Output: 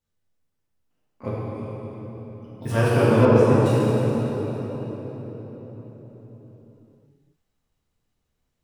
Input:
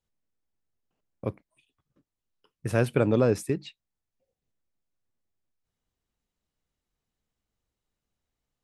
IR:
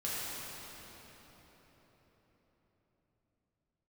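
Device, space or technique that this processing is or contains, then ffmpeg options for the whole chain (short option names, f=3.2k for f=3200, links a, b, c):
shimmer-style reverb: -filter_complex "[0:a]asplit=2[a][b];[b]asetrate=88200,aresample=44100,atempo=0.5,volume=-11dB[c];[a][c]amix=inputs=2:normalize=0[d];[1:a]atrim=start_sample=2205[e];[d][e]afir=irnorm=-1:irlink=0,asettb=1/sr,asplit=3[f][g][h];[f]atrim=end=3.254[i];[g]atrim=start=3.25:end=3.66,asetpts=PTS-STARTPTS,afade=t=in:d=0.004:c=qsin,afade=t=out:st=0.406:d=0.004:c=qsin,aemphasis=mode=reproduction:type=50fm[j];[h]atrim=start=3.656[k];[i][j]acrossfade=d=0.004:c1=hsin:c2=qsin[l];[l][k]acrossfade=d=0.004:c1=qsin:c2=hsin,volume=1.5dB"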